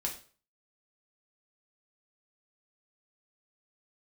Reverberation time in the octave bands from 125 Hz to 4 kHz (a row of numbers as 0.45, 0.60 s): 0.45, 0.40, 0.45, 0.40, 0.40, 0.35 s